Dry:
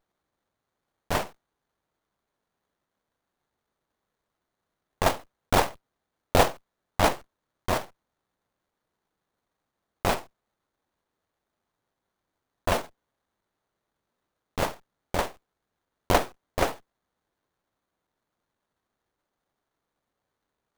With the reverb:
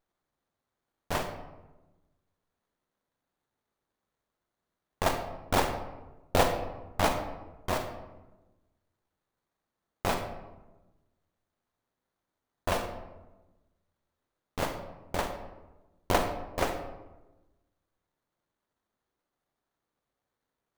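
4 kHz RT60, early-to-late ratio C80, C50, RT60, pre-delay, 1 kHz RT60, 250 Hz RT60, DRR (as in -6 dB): 0.60 s, 9.5 dB, 7.5 dB, 1.1 s, 36 ms, 1.0 s, 1.4 s, 6.5 dB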